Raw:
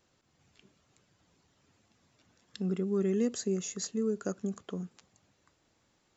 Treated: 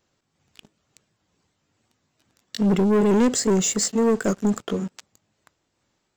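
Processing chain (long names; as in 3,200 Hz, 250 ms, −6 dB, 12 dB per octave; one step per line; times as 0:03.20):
pitch shifter swept by a sawtooth +1.5 semitones, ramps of 389 ms
leveller curve on the samples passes 3
level +6 dB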